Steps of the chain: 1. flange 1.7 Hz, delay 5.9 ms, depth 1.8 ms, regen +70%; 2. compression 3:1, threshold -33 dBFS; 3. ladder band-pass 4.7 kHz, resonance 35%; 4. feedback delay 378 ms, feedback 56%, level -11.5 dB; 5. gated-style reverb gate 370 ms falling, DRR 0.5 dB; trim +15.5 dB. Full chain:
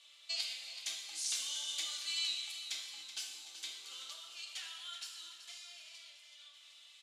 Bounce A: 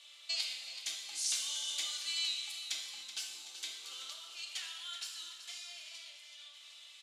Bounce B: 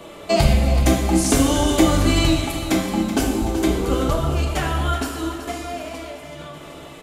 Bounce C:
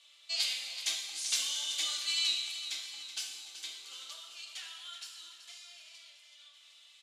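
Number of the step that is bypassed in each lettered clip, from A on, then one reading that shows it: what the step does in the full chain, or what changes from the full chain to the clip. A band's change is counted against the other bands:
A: 1, momentary loudness spread change -3 LU; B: 3, 500 Hz band +28.5 dB; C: 2, mean gain reduction 2.0 dB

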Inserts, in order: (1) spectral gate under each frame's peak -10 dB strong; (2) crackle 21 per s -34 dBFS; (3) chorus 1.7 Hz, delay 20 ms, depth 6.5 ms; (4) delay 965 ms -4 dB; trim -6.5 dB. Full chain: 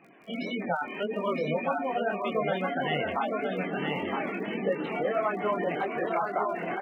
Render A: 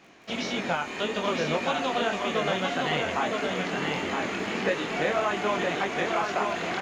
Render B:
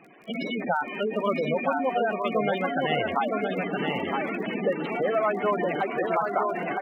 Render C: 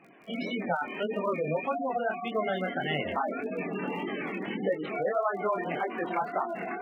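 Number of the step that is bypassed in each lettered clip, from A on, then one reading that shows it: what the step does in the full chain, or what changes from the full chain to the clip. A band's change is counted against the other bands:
1, 4 kHz band +8.0 dB; 3, loudness change +3.0 LU; 4, momentary loudness spread change +1 LU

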